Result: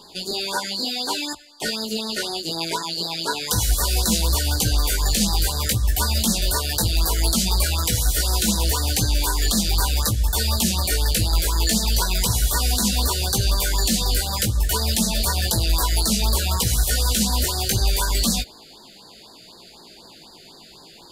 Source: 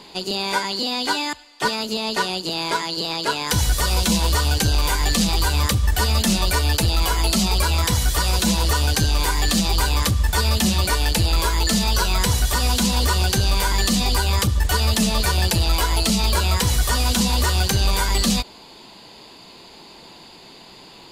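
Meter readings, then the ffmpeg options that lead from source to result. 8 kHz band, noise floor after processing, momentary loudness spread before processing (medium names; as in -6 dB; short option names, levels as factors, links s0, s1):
+2.0 dB, -46 dBFS, 4 LU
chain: -af "flanger=delay=17:depth=2.2:speed=0.66,crystalizer=i=1:c=0,afftfilt=real='re*(1-between(b*sr/1024,920*pow(2700/920,0.5+0.5*sin(2*PI*4*pts/sr))/1.41,920*pow(2700/920,0.5+0.5*sin(2*PI*4*pts/sr))*1.41))':imag='im*(1-between(b*sr/1024,920*pow(2700/920,0.5+0.5*sin(2*PI*4*pts/sr))/1.41,920*pow(2700/920,0.5+0.5*sin(2*PI*4*pts/sr))*1.41))':win_size=1024:overlap=0.75"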